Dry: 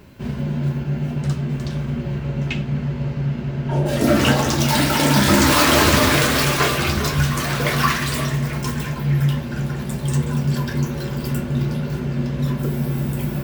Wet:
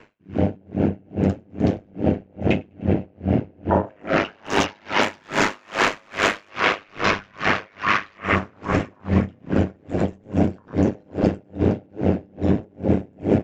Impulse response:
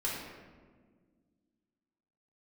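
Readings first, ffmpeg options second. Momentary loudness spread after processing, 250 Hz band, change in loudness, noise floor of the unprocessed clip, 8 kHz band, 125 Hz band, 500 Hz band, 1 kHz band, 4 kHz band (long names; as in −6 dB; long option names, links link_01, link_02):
3 LU, −1.5 dB, −3.5 dB, −28 dBFS, −14.0 dB, −7.0 dB, 0.0 dB, −2.0 dB, −8.0 dB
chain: -filter_complex "[0:a]asplit=2[link_01][link_02];[link_02]asplit=8[link_03][link_04][link_05][link_06][link_07][link_08][link_09][link_10];[link_03]adelay=101,afreqshift=34,volume=-8dB[link_11];[link_04]adelay=202,afreqshift=68,volume=-12.3dB[link_12];[link_05]adelay=303,afreqshift=102,volume=-16.6dB[link_13];[link_06]adelay=404,afreqshift=136,volume=-20.9dB[link_14];[link_07]adelay=505,afreqshift=170,volume=-25.2dB[link_15];[link_08]adelay=606,afreqshift=204,volume=-29.5dB[link_16];[link_09]adelay=707,afreqshift=238,volume=-33.8dB[link_17];[link_10]adelay=808,afreqshift=272,volume=-38.1dB[link_18];[link_11][link_12][link_13][link_14][link_15][link_16][link_17][link_18]amix=inputs=8:normalize=0[link_19];[link_01][link_19]amix=inputs=2:normalize=0,aresample=16000,aresample=44100,bass=frequency=250:gain=-15,treble=frequency=4000:gain=6,aeval=exprs='val(0)*sin(2*PI*51*n/s)':channel_layout=same,afwtdn=0.0316,acompressor=threshold=-25dB:ratio=6,highshelf=frequency=3300:width_type=q:width=1.5:gain=-9.5,asplit=2[link_20][link_21];[link_21]aecho=0:1:503|1006|1509|2012:0.126|0.0554|0.0244|0.0107[link_22];[link_20][link_22]amix=inputs=2:normalize=0,alimiter=level_in=27.5dB:limit=-1dB:release=50:level=0:latency=1,aeval=exprs='val(0)*pow(10,-38*(0.5-0.5*cos(2*PI*2.4*n/s))/20)':channel_layout=same,volume=-5.5dB"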